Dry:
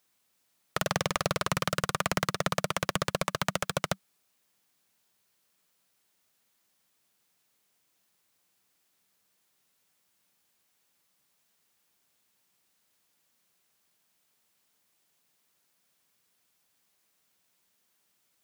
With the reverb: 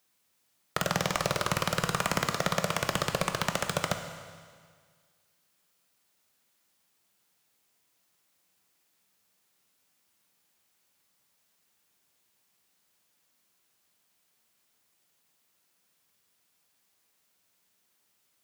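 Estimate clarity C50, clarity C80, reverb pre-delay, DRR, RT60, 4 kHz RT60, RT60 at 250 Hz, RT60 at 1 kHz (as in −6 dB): 7.5 dB, 9.0 dB, 15 ms, 6.0 dB, 1.8 s, 1.8 s, 1.8 s, 1.8 s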